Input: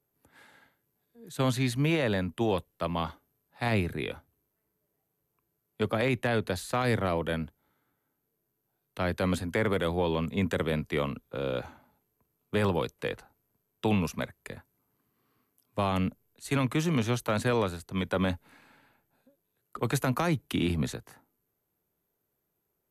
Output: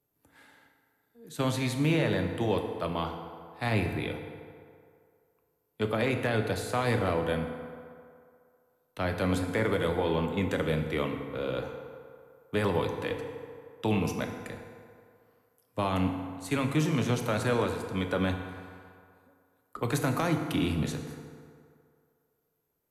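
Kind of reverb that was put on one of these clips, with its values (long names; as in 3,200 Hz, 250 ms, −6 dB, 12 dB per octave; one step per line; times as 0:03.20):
feedback delay network reverb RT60 2.3 s, low-frequency decay 0.75×, high-frequency decay 0.55×, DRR 4 dB
level −1.5 dB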